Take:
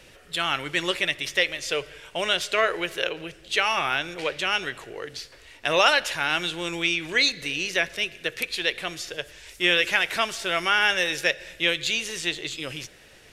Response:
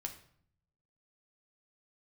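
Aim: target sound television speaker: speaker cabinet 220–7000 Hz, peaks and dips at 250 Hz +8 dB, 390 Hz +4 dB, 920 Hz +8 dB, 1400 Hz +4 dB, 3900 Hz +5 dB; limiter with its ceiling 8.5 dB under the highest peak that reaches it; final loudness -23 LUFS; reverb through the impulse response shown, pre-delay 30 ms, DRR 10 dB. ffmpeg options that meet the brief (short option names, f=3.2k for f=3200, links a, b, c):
-filter_complex "[0:a]alimiter=limit=-14dB:level=0:latency=1,asplit=2[a][b];[1:a]atrim=start_sample=2205,adelay=30[c];[b][c]afir=irnorm=-1:irlink=0,volume=-8dB[d];[a][d]amix=inputs=2:normalize=0,highpass=f=220:w=0.5412,highpass=f=220:w=1.3066,equalizer=f=250:t=q:w=4:g=8,equalizer=f=390:t=q:w=4:g=4,equalizer=f=920:t=q:w=4:g=8,equalizer=f=1.4k:t=q:w=4:g=4,equalizer=f=3.9k:t=q:w=4:g=5,lowpass=f=7k:w=0.5412,lowpass=f=7k:w=1.3066,volume=2dB"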